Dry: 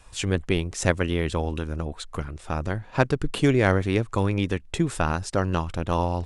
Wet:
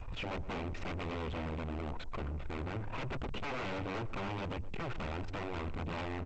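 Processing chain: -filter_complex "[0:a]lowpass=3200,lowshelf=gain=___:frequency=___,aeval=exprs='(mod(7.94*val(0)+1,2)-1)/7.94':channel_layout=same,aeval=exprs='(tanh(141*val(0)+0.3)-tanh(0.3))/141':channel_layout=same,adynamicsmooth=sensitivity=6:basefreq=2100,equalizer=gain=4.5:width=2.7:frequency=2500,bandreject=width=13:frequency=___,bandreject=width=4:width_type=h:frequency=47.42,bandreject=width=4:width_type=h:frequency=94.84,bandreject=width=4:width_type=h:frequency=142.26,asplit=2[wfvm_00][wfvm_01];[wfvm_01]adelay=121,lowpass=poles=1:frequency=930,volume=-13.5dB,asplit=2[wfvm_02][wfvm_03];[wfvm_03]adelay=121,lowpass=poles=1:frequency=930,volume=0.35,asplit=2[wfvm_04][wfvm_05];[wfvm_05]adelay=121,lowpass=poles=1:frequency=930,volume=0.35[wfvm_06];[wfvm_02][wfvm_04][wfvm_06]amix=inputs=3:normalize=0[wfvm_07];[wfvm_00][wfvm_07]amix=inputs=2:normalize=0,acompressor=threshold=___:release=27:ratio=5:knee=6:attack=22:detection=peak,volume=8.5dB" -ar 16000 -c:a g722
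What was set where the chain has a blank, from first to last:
8, 210, 1700, -46dB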